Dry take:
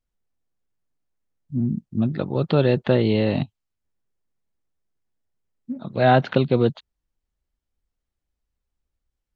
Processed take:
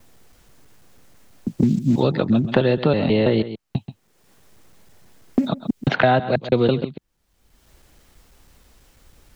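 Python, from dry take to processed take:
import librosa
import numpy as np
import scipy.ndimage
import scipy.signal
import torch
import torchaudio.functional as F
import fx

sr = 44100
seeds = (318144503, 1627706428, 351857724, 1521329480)

p1 = fx.block_reorder(x, sr, ms=163.0, group=3)
p2 = fx.low_shelf(p1, sr, hz=95.0, db=-9.0)
p3 = p2 + fx.echo_single(p2, sr, ms=132, db=-15.5, dry=0)
p4 = fx.band_squash(p3, sr, depth_pct=100)
y = p4 * librosa.db_to_amplitude(3.0)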